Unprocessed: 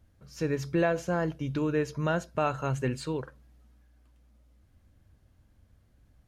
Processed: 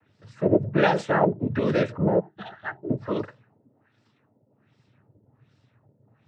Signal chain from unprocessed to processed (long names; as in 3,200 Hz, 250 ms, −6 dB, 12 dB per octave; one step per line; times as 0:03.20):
0:02.19–0:02.89: resonances in every octave F, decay 0.19 s
auto-filter low-pass sine 1.3 Hz 420–4,600 Hz
cochlear-implant simulation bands 12
level +5.5 dB